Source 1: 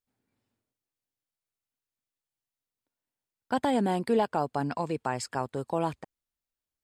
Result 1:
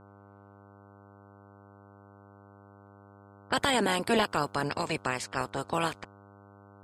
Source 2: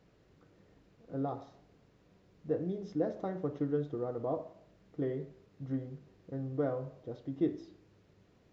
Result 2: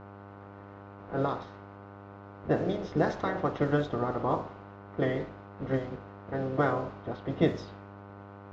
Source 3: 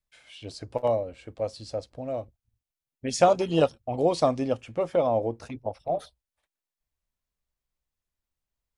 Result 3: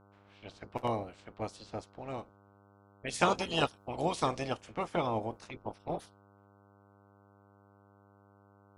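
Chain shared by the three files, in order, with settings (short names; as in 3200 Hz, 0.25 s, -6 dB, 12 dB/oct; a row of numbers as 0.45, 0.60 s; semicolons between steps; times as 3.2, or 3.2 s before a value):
spectral limiter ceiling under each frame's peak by 20 dB; buzz 100 Hz, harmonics 15, -54 dBFS -3 dB/oct; low-pass opened by the level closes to 1600 Hz, open at -26.5 dBFS; normalise peaks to -12 dBFS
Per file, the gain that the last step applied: 0.0, +6.5, -8.0 dB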